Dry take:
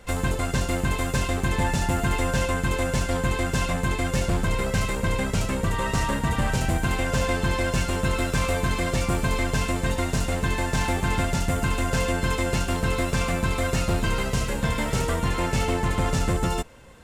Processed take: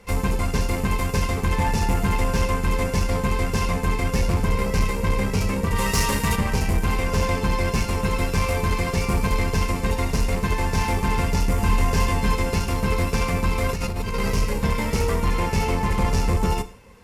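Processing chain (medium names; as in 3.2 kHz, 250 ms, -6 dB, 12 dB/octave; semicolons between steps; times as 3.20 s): octave divider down 1 oct, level -2 dB; 5.75–6.35 s: treble shelf 3.3 kHz -> 2.3 kHz +11.5 dB; gated-style reverb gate 200 ms falling, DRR 10 dB; 13.69–14.33 s: compressor with a negative ratio -25 dBFS, ratio -1; Chebyshev shaper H 7 -26 dB, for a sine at -9 dBFS; rippled EQ curve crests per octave 0.84, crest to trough 7 dB; saturation -15 dBFS, distortion -16 dB; 11.56–12.33 s: doubling 24 ms -5 dB; trim +2 dB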